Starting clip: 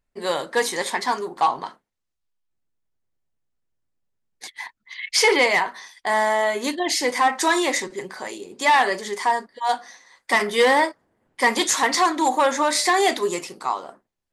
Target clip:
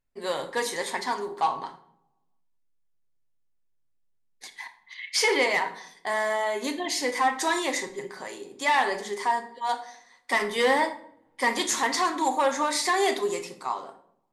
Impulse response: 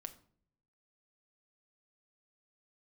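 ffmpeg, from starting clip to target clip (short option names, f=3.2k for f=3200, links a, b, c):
-filter_complex "[1:a]atrim=start_sample=2205,asetrate=33516,aresample=44100[a];[0:a][a]afir=irnorm=-1:irlink=0,volume=-2.5dB"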